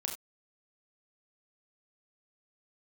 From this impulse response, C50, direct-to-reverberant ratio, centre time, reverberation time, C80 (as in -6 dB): 7.5 dB, 2.0 dB, 21 ms, no single decay rate, 12.0 dB